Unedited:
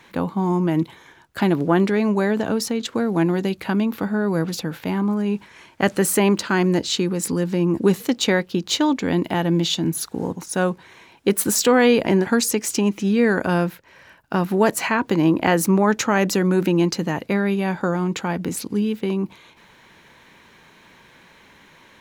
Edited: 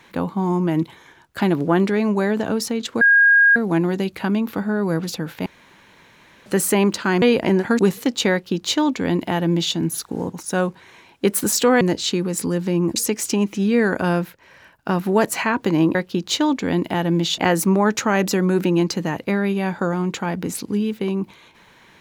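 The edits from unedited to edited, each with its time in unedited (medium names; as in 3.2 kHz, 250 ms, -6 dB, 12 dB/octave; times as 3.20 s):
3.01 s: add tone 1.63 kHz -9.5 dBFS 0.55 s
4.91–5.91 s: room tone
6.67–7.82 s: swap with 11.84–12.41 s
8.35–9.78 s: copy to 15.40 s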